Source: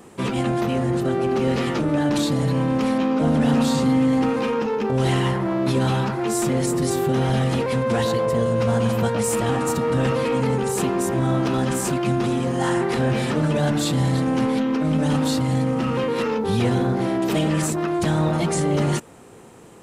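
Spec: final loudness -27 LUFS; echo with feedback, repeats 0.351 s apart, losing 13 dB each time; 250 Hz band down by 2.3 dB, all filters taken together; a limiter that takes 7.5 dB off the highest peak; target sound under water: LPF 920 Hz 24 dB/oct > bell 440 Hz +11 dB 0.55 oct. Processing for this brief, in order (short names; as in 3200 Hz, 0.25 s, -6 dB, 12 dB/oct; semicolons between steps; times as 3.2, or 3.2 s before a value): bell 250 Hz -6 dB; limiter -19.5 dBFS; LPF 920 Hz 24 dB/oct; bell 440 Hz +11 dB 0.55 oct; feedback echo 0.351 s, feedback 22%, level -13 dB; gain -3.5 dB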